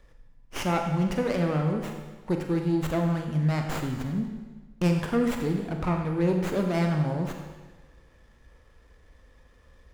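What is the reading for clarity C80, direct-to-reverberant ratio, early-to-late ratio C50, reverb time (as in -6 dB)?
6.0 dB, 3.0 dB, 4.5 dB, 1.3 s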